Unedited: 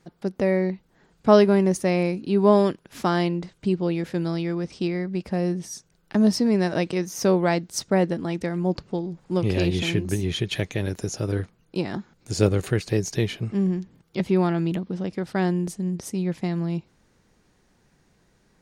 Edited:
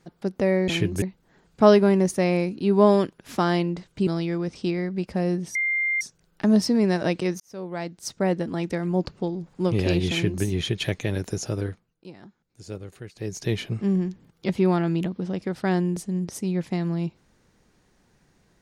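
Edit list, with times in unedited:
3.73–4.24 s: delete
5.72 s: add tone 2.1 kHz -21 dBFS 0.46 s
7.11–8.30 s: fade in
9.81–10.15 s: copy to 0.68 s
11.18–13.32 s: dip -16.5 dB, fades 0.48 s

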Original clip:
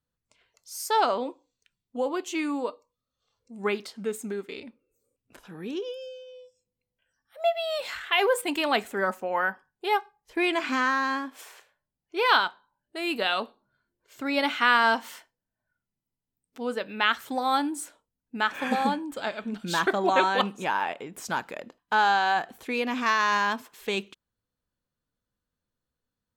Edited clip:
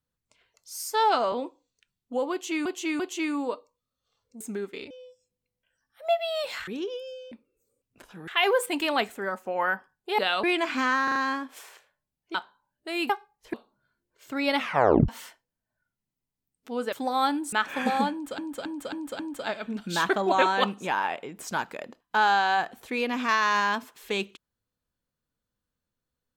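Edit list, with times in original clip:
0.83–1.16 s: stretch 1.5×
2.15–2.49 s: loop, 3 plays
3.56–4.16 s: delete
4.66–5.62 s: swap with 6.26–8.03 s
8.62–9.20 s: fade out linear, to -7 dB
9.94–10.38 s: swap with 13.18–13.43 s
10.98 s: stutter 0.04 s, 4 plays
12.17–12.43 s: delete
14.46 s: tape stop 0.52 s
16.82–17.23 s: delete
17.83–18.38 s: delete
18.97–19.24 s: loop, 5 plays

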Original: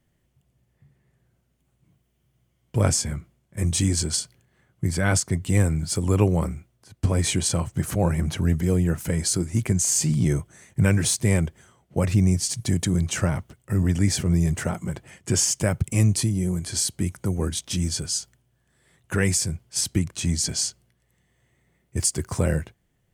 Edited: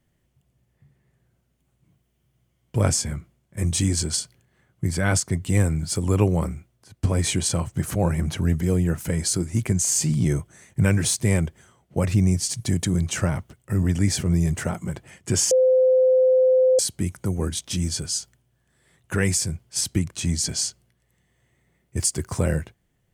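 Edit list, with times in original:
15.51–16.79 s: bleep 515 Hz -13.5 dBFS

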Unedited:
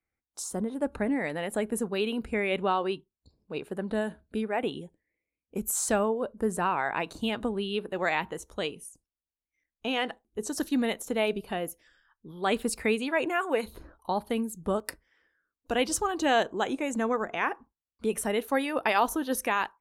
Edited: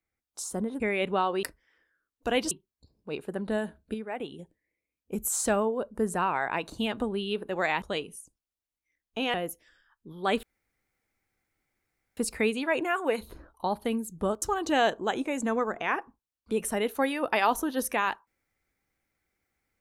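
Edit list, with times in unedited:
0.80–2.31 s: delete
4.37–4.82 s: gain -6 dB
8.25–8.50 s: delete
10.02–11.53 s: delete
12.62 s: insert room tone 1.74 s
14.87–15.95 s: move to 2.94 s

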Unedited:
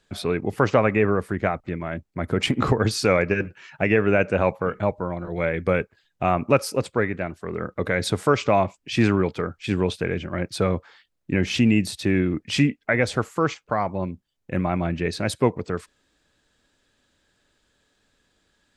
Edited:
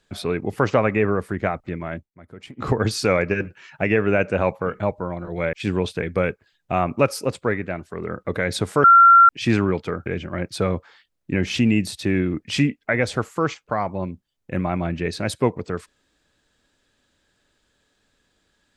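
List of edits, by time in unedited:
1.94–2.73 s: dip -18.5 dB, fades 0.16 s
8.35–8.80 s: bleep 1.37 kHz -7 dBFS
9.57–10.06 s: move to 5.53 s

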